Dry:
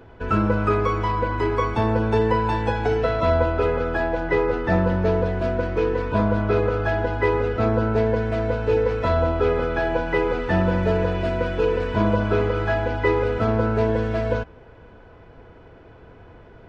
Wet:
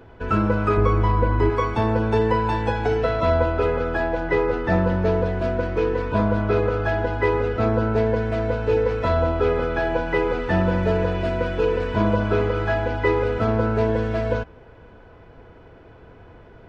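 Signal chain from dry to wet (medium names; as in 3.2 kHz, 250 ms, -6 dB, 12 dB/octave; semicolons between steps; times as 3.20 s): 0.77–1.50 s: tilt EQ -2 dB/octave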